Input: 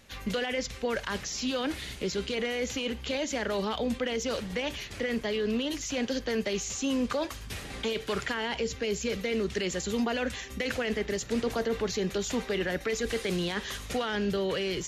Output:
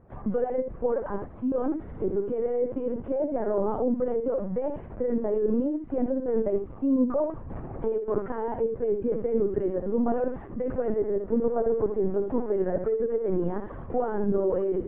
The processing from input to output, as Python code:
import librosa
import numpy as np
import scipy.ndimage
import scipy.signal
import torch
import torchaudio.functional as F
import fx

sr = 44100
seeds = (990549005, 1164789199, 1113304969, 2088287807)

y = scipy.signal.sosfilt(scipy.signal.butter(4, 1000.0, 'lowpass', fs=sr, output='sos'), x)
y = y + 10.0 ** (-7.0 / 20.0) * np.pad(y, (int(70 * sr / 1000.0), 0))[:len(y)]
y = fx.lpc_vocoder(y, sr, seeds[0], excitation='pitch_kept', order=16)
y = y * 10.0 ** (4.5 / 20.0)